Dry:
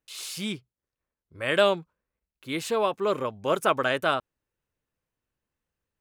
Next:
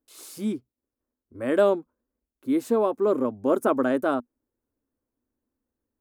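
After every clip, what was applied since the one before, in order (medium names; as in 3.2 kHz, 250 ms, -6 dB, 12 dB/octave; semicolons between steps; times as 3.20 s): FFT filter 110 Hz 0 dB, 170 Hz -10 dB, 240 Hz +14 dB, 430 Hz +4 dB, 1.5 kHz -5 dB, 2.8 kHz -16 dB, 13 kHz -1 dB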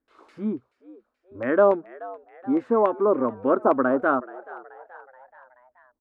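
LFO low-pass saw down 3.5 Hz 890–2000 Hz; frequency-shifting echo 429 ms, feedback 54%, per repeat +90 Hz, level -19.5 dB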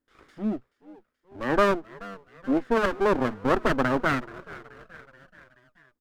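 comb filter that takes the minimum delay 0.6 ms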